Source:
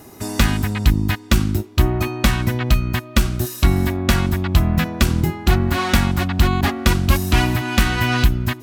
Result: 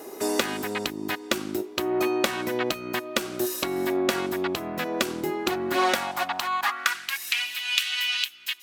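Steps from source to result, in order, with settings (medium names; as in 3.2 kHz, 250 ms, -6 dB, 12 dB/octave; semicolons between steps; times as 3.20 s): compression, threshold -19 dBFS, peak gain reduction 10.5 dB; 5.31–7.98 s: phaser 1.9 Hz, delay 1.3 ms, feedback 22%; high-pass sweep 410 Hz -> 2.9 kHz, 5.71–7.53 s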